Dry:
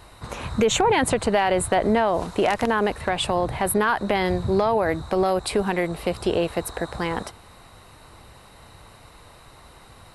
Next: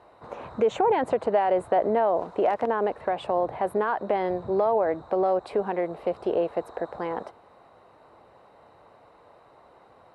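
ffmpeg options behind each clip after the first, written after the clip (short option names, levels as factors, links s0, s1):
-af "bandpass=f=590:t=q:w=1.2:csg=0"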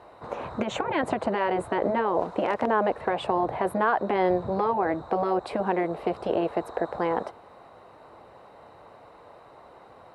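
-af "afftfilt=real='re*lt(hypot(re,im),0.447)':imag='im*lt(hypot(re,im),0.447)':win_size=1024:overlap=0.75,volume=1.68"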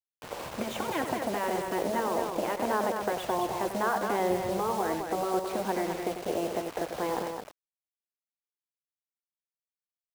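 -filter_complex "[0:a]acrusher=bits=5:mix=0:aa=0.000001,asplit=2[s0][s1];[s1]aecho=0:1:93.29|212.8:0.355|0.501[s2];[s0][s2]amix=inputs=2:normalize=0,volume=0.531"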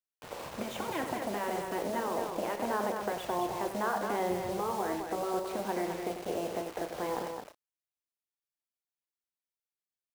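-filter_complex "[0:a]asplit=2[s0][s1];[s1]adelay=34,volume=0.316[s2];[s0][s2]amix=inputs=2:normalize=0,volume=0.631"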